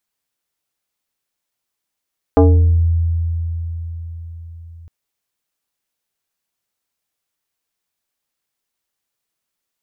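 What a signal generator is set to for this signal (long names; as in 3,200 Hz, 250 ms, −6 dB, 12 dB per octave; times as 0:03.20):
two-operator FM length 2.51 s, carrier 83.5 Hz, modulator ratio 4.42, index 1.9, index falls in 0.63 s exponential, decay 4.96 s, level −5.5 dB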